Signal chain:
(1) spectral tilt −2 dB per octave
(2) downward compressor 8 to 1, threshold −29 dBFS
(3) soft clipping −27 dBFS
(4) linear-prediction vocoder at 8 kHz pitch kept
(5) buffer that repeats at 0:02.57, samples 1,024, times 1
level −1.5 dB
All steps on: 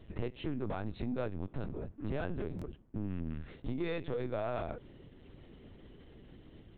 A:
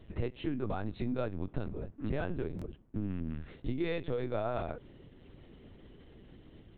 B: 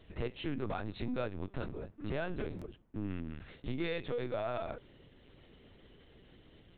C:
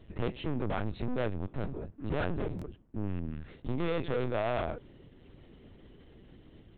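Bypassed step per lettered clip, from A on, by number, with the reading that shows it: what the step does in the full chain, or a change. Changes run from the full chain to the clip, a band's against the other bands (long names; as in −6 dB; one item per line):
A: 3, distortion level −16 dB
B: 1, 4 kHz band +4.5 dB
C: 2, average gain reduction 5.0 dB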